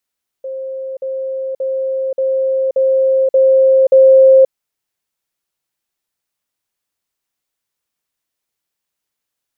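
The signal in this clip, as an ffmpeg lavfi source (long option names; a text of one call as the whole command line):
ffmpeg -f lavfi -i "aevalsrc='pow(10,(-21.5+3*floor(t/0.58))/20)*sin(2*PI*530*t)*clip(min(mod(t,0.58),0.53-mod(t,0.58))/0.005,0,1)':duration=4.06:sample_rate=44100" out.wav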